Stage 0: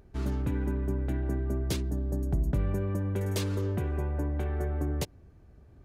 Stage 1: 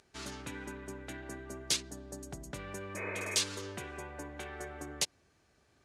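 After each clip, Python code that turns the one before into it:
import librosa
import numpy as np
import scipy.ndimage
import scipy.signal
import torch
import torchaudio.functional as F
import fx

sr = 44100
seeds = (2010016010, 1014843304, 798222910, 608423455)

y = fx.weighting(x, sr, curve='ITU-R 468')
y = fx.spec_repair(y, sr, seeds[0], start_s=2.99, length_s=0.34, low_hz=260.0, high_hz=2600.0, source='after')
y = fx.low_shelf(y, sr, hz=210.0, db=4.5)
y = y * librosa.db_to_amplitude(-2.5)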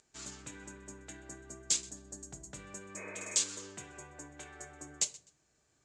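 y = fx.lowpass_res(x, sr, hz=7400.0, q=6.3)
y = fx.echo_feedback(y, sr, ms=127, feedback_pct=24, wet_db=-21.5)
y = fx.room_shoebox(y, sr, seeds[1], volume_m3=290.0, walls='furnished', distance_m=0.58)
y = y * librosa.db_to_amplitude(-7.5)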